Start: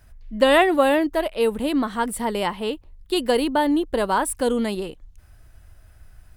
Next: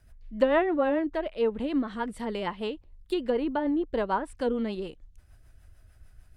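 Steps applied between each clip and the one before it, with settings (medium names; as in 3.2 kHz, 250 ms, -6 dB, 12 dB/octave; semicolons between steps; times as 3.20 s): low-pass that closes with the level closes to 1.7 kHz, closed at -16 dBFS; rotary cabinet horn 6.7 Hz; trim -4.5 dB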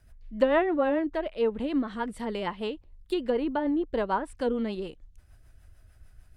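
no audible change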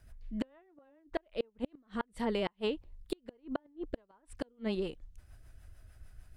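inverted gate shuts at -21 dBFS, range -38 dB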